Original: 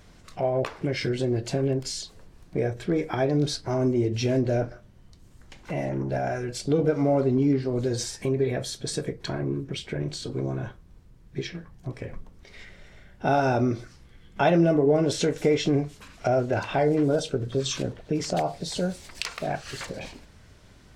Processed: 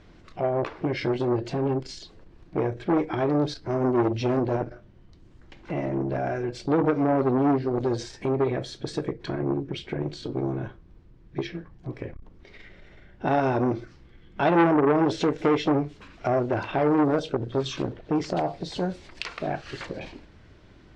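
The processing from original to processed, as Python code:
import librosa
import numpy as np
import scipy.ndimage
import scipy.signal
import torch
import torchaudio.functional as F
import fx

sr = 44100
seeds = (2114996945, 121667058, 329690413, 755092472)

y = scipy.signal.sosfilt(scipy.signal.butter(2, 3800.0, 'lowpass', fs=sr, output='sos'), x)
y = fx.peak_eq(y, sr, hz=330.0, db=7.5, octaves=0.46)
y = fx.transformer_sat(y, sr, knee_hz=1000.0)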